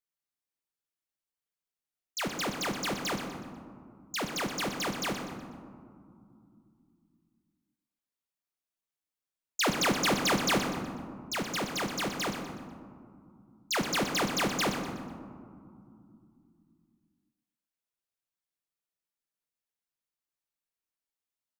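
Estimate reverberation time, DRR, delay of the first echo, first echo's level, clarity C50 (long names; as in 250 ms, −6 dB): 2.5 s, 3.5 dB, 123 ms, −10.0 dB, 5.0 dB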